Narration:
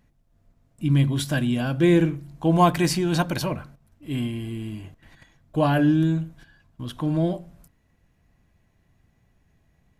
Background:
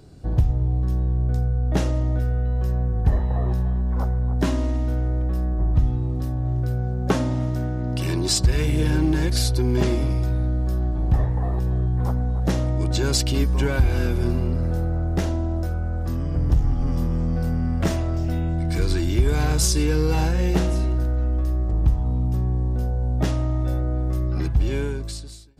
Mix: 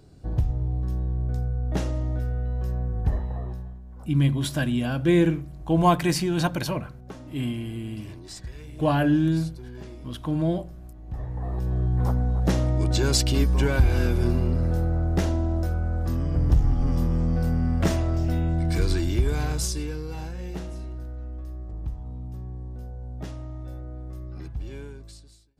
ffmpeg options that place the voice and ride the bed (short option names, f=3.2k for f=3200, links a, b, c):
-filter_complex "[0:a]adelay=3250,volume=-1.5dB[a];[1:a]volume=14.5dB,afade=t=out:st=3.07:d=0.73:silence=0.177828,afade=t=in:st=11.05:d=0.95:silence=0.105925,afade=t=out:st=18.69:d=1.34:silence=0.223872[b];[a][b]amix=inputs=2:normalize=0"